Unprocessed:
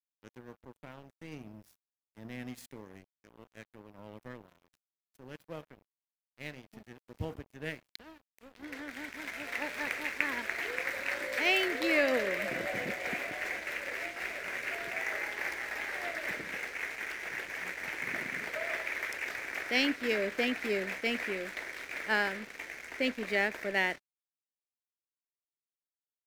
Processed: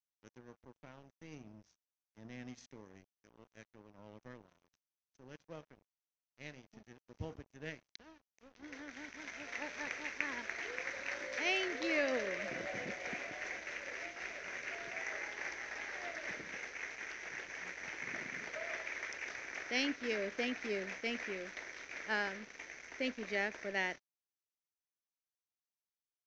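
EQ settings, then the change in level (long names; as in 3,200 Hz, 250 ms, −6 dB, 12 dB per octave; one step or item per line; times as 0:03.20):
transistor ladder low-pass 6,400 Hz, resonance 80%
high-frequency loss of the air 150 metres
+6.5 dB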